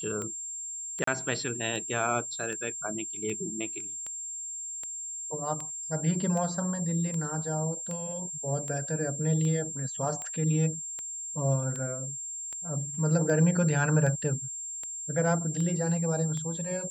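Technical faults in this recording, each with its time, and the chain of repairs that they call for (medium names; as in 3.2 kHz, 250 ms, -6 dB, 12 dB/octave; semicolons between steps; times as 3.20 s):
tick 78 rpm -24 dBFS
whine 7.4 kHz -35 dBFS
1.04–1.07 s: dropout 34 ms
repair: de-click; band-stop 7.4 kHz, Q 30; interpolate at 1.04 s, 34 ms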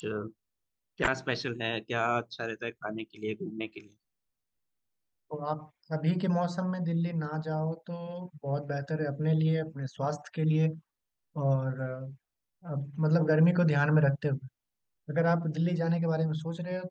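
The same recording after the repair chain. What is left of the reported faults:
whine 7.4 kHz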